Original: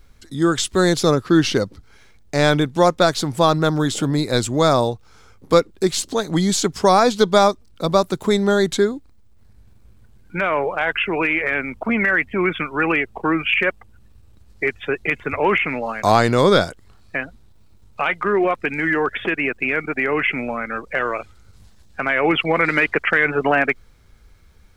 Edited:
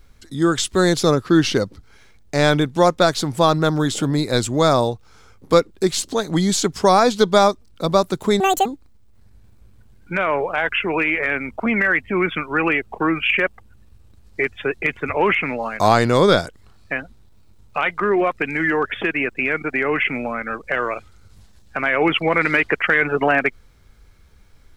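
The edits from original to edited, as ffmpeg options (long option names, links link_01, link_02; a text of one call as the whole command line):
ffmpeg -i in.wav -filter_complex "[0:a]asplit=3[link_01][link_02][link_03];[link_01]atrim=end=8.404[link_04];[link_02]atrim=start=8.4:end=8.89,asetpts=PTS-STARTPTS,asetrate=84231,aresample=44100[link_05];[link_03]atrim=start=8.886[link_06];[link_04][link_05]acrossfade=duration=0.004:curve1=hsin:curve2=hsin[link_07];[link_07][link_06]acrossfade=duration=0.004:curve1=hsin:curve2=hsin" out.wav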